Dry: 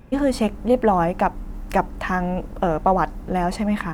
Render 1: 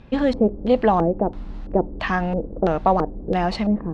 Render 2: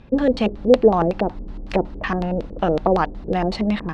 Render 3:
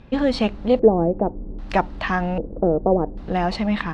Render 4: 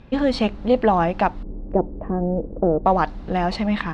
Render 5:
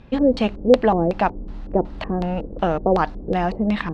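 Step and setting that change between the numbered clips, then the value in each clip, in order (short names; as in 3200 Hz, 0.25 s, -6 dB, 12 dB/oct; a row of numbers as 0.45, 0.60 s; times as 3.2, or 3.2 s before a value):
LFO low-pass, rate: 1.5, 5.4, 0.63, 0.35, 2.7 Hz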